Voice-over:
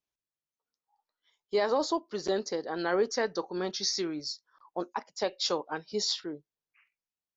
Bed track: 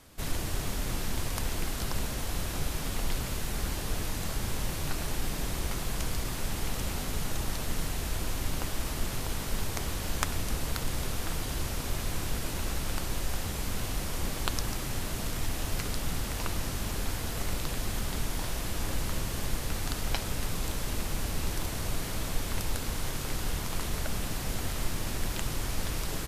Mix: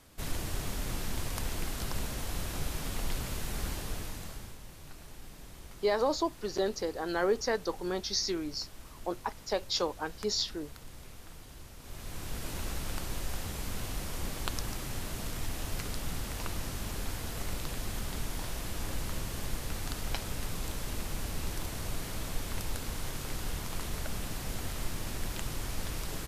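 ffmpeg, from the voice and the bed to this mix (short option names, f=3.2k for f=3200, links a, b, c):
-filter_complex "[0:a]adelay=4300,volume=-1dB[a];[1:a]volume=9.5dB,afade=t=out:st=3.68:d=0.9:silence=0.211349,afade=t=in:st=11.79:d=0.75:silence=0.237137[b];[a][b]amix=inputs=2:normalize=0"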